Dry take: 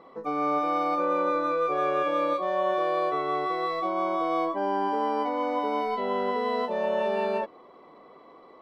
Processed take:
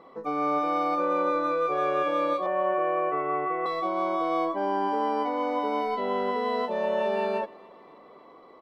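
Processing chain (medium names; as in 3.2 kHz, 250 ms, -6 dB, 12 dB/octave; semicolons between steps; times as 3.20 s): 2.46–3.66 s: steep low-pass 2.9 kHz 96 dB/octave; on a send: feedback delay 279 ms, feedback 54%, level -24 dB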